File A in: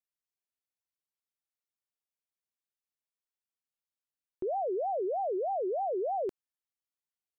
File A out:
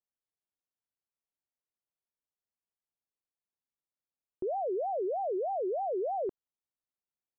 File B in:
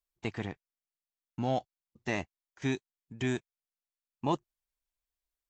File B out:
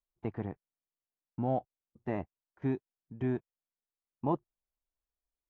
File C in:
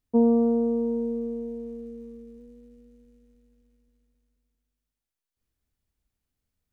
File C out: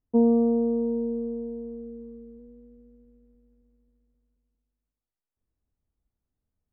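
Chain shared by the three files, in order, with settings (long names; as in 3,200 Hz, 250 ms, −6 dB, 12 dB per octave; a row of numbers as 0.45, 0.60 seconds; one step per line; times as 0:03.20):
low-pass filter 1,000 Hz 12 dB per octave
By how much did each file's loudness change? −0.5, −1.0, 0.0 LU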